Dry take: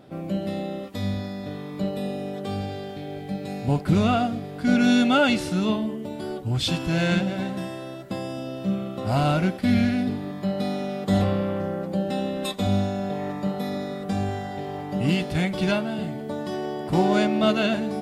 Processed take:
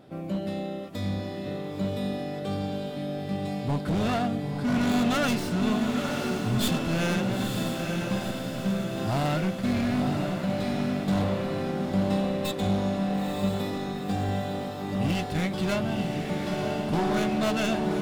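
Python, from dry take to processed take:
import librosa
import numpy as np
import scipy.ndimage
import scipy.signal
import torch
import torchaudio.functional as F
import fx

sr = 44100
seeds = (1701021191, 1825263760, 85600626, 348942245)

y = fx.tracing_dist(x, sr, depth_ms=0.13)
y = np.clip(y, -10.0 ** (-20.5 / 20.0), 10.0 ** (-20.5 / 20.0))
y = fx.echo_diffused(y, sr, ms=938, feedback_pct=58, wet_db=-4)
y = F.gain(torch.from_numpy(y), -2.5).numpy()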